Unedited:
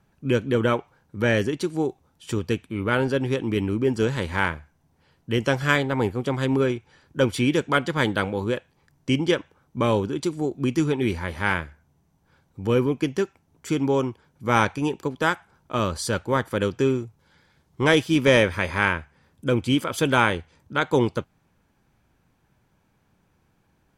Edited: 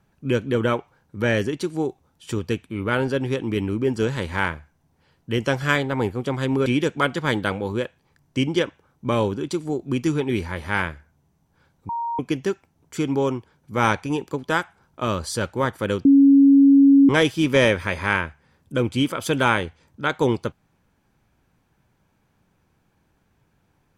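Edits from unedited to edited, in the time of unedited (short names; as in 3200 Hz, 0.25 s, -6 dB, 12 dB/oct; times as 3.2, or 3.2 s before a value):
6.66–7.38 cut
12.61–12.91 bleep 934 Hz -23.5 dBFS
16.77–17.81 bleep 277 Hz -9 dBFS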